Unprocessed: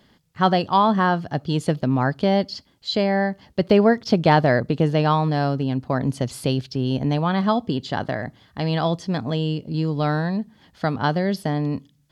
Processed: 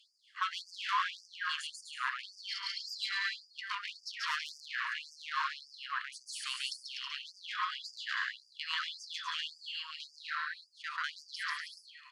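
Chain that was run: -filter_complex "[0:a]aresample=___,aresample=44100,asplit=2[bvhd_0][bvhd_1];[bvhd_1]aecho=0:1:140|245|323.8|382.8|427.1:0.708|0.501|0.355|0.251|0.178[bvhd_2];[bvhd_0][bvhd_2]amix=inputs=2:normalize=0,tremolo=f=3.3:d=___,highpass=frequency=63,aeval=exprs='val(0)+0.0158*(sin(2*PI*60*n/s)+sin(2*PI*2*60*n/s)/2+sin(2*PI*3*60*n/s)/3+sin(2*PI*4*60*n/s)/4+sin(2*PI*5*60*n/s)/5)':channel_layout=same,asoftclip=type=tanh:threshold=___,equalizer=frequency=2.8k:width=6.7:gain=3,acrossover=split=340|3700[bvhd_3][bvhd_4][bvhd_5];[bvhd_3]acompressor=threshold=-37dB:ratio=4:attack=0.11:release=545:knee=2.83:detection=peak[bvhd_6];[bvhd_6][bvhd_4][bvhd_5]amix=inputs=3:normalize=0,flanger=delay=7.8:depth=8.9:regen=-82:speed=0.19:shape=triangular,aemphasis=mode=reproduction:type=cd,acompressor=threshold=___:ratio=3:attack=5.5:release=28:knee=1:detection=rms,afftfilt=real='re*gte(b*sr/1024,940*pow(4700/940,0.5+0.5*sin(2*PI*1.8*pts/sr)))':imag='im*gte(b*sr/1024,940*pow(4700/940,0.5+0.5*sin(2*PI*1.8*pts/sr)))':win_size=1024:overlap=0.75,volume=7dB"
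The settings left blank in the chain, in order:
22050, 0.34, -18dB, -32dB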